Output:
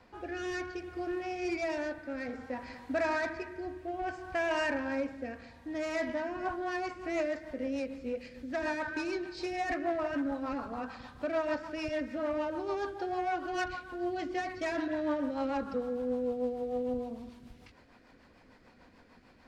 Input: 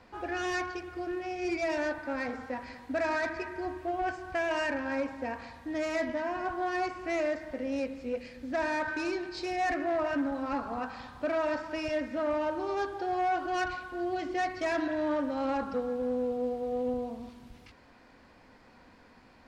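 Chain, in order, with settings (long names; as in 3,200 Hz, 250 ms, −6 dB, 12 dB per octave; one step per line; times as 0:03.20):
rotating-speaker cabinet horn 0.6 Hz, later 6.7 Hz, at 0:05.97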